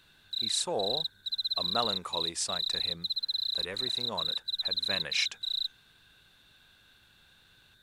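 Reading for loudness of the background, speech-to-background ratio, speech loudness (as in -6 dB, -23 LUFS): -30.5 LUFS, -5.5 dB, -36.0 LUFS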